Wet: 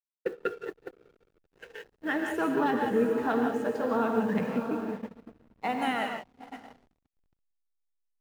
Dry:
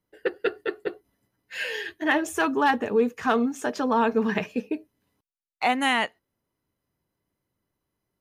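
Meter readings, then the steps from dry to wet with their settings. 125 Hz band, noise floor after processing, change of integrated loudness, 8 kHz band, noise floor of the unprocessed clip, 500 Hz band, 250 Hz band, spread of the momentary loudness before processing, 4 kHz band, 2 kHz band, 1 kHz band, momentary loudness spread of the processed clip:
+1.0 dB, −83 dBFS, −4.0 dB, below −10 dB, −83 dBFS, −3.0 dB, −2.5 dB, 10 LU, −11.0 dB, −8.0 dB, −5.5 dB, 20 LU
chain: phase shifter 0.4 Hz, delay 1.9 ms, feedback 34%
amplitude modulation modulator 110 Hz, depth 10%
bit-depth reduction 8 bits, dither none
dynamic equaliser 170 Hz, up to +7 dB, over −42 dBFS, Q 1.3
feedback delay with all-pass diffusion 681 ms, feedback 45%, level −8 dB
reverb whose tail is shaped and stops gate 200 ms rising, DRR 3 dB
noise gate −27 dBFS, range −16 dB
parametric band 5,400 Hz −7 dB 2.4 octaves
hollow resonant body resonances 480/1,400/4,000 Hz, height 7 dB, ringing for 40 ms
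slack as between gear wheels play −39 dBFS
level −7.5 dB

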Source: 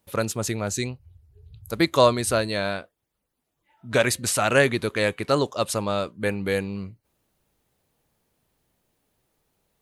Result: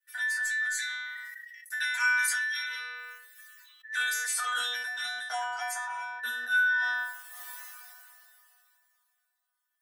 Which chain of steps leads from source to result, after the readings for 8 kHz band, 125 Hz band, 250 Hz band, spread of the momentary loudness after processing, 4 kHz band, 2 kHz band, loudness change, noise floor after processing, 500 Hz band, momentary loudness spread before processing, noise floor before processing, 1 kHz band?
−4.5 dB, below −40 dB, below −40 dB, 17 LU, −4.0 dB, +3.5 dB, −5.5 dB, −81 dBFS, −29.0 dB, 12 LU, −79 dBFS, −8.0 dB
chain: frequency inversion band by band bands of 2,000 Hz
transient designer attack +6 dB, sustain −6 dB
high-shelf EQ 5,200 Hz +11 dB
mains-hum notches 60/120/180/240/300/360/420/480 Hz
stiff-string resonator 240 Hz, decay 0.63 s, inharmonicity 0.002
high-pass filter sweep 1,800 Hz → 860 Hz, 0:03.92–0:04.85
level that may fall only so fast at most 21 dB per second

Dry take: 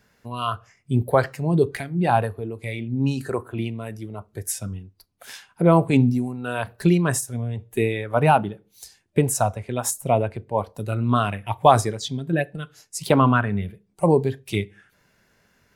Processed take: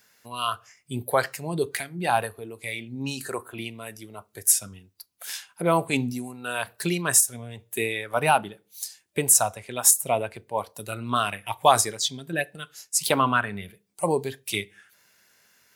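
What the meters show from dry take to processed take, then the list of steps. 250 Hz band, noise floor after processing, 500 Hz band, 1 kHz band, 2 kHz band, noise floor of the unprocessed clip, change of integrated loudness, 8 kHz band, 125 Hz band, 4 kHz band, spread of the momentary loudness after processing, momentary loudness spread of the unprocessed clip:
−9.0 dB, −68 dBFS, −5.0 dB, −2.5 dB, +1.0 dB, −64 dBFS, −2.0 dB, +8.5 dB, −12.0 dB, +4.5 dB, 17 LU, 16 LU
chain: spectral tilt +3.5 dB per octave
level −2 dB

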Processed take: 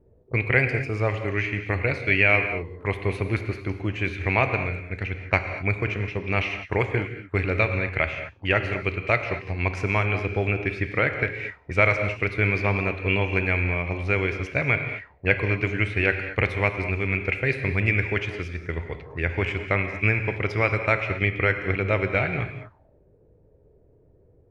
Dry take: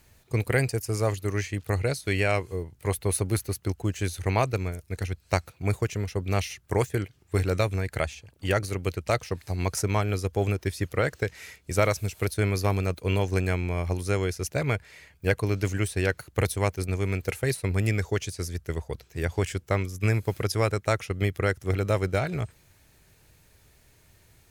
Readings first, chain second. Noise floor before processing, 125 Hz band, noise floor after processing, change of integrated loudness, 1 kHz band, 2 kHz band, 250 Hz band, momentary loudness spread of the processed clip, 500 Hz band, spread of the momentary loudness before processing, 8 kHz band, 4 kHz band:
−61 dBFS, +0.5 dB, −58 dBFS, +3.5 dB, +2.5 dB, +10.0 dB, +1.0 dB, 8 LU, +1.0 dB, 6 LU, below −15 dB, +0.5 dB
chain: reverb whose tail is shaped and stops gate 260 ms flat, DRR 6.5 dB
envelope-controlled low-pass 420–2,400 Hz up, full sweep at −30 dBFS

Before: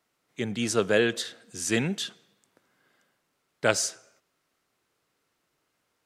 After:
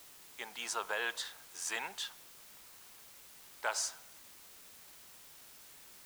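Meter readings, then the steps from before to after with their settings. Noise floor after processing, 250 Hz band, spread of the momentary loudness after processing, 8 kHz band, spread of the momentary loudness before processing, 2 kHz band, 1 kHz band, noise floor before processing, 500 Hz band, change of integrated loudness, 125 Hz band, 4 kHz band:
−56 dBFS, −28.5 dB, 17 LU, −7.5 dB, 12 LU, −8.0 dB, −4.5 dB, −77 dBFS, −18.5 dB, −10.5 dB, −34.0 dB, −8.0 dB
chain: brickwall limiter −14.5 dBFS, peak gain reduction 9 dB
high-pass with resonance 920 Hz, resonance Q 4.9
bit-depth reduction 8 bits, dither triangular
level −8 dB

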